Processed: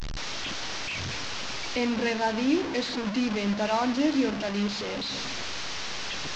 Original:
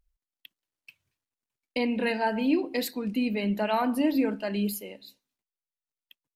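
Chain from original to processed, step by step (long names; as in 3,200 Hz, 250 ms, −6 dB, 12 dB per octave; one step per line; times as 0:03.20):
linear delta modulator 32 kbit/s, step −26 dBFS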